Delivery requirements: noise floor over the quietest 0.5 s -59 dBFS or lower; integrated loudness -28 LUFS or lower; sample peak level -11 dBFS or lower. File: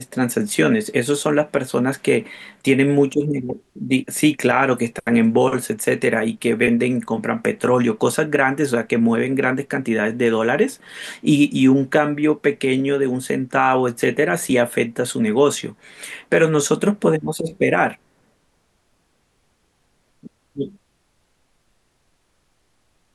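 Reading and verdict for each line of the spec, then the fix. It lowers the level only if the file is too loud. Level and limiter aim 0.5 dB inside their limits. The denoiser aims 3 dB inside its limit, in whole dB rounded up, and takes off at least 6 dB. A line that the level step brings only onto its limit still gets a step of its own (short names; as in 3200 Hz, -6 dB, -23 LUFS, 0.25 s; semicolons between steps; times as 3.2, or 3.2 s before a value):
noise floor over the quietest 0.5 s -65 dBFS: OK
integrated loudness -19.0 LUFS: fail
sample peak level -4.0 dBFS: fail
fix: gain -9.5 dB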